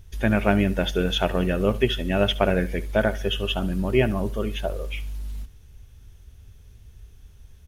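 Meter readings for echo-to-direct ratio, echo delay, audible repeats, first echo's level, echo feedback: -17.5 dB, 71 ms, 2, -18.0 dB, 29%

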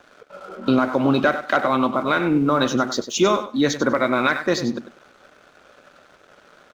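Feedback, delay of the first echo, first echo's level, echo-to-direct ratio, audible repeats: 19%, 97 ms, -11.5 dB, -11.5 dB, 2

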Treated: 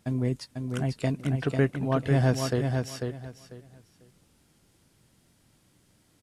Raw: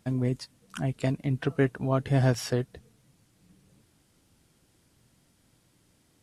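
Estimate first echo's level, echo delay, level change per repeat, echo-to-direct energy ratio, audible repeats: -5.0 dB, 495 ms, -13.5 dB, -5.0 dB, 3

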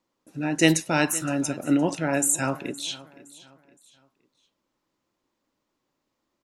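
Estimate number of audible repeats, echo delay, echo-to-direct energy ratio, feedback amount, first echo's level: 2, 516 ms, -19.0 dB, 37%, -19.5 dB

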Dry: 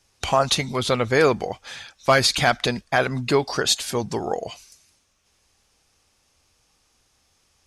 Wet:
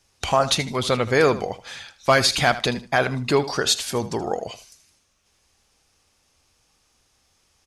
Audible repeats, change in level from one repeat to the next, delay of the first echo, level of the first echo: 2, -13.0 dB, 78 ms, -15.0 dB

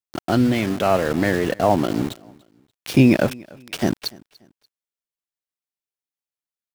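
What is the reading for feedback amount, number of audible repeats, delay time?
32%, 2, 290 ms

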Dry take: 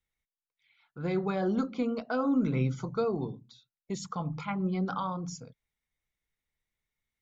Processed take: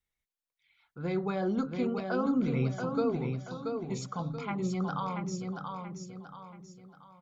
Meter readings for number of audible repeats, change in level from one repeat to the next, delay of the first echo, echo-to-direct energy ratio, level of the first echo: 4, -8.0 dB, 681 ms, -4.5 dB, -5.0 dB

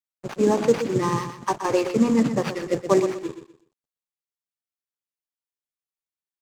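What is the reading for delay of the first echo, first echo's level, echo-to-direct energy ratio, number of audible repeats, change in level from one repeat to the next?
123 ms, -10.0 dB, -9.5 dB, 3, -11.5 dB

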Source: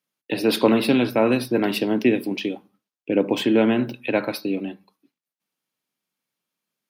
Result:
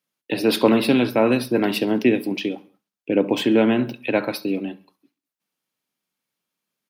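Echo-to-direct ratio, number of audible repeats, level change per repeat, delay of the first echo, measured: -22.5 dB, 2, -5.5 dB, 67 ms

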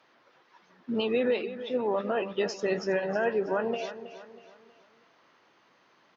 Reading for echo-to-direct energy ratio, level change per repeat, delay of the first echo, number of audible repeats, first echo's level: -12.0 dB, -8.0 dB, 321 ms, 3, -13.0 dB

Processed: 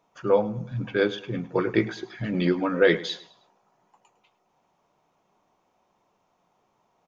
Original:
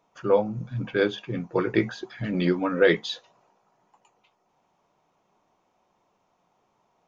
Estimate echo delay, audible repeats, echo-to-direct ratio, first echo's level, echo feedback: 105 ms, 3, -17.0 dB, -17.5 dB, 37%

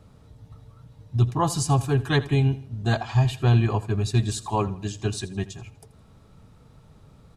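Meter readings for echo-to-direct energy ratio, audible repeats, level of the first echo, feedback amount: -16.5 dB, 3, -17.5 dB, 42%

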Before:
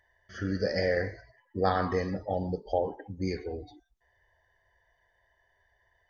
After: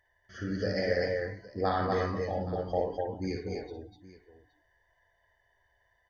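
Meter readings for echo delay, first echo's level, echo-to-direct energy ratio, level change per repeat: 57 ms, -6.0 dB, -0.5 dB, no regular repeats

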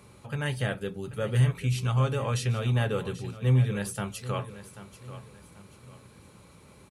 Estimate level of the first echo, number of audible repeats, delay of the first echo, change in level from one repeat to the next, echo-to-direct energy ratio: -14.0 dB, 3, 787 ms, -9.0 dB, -13.5 dB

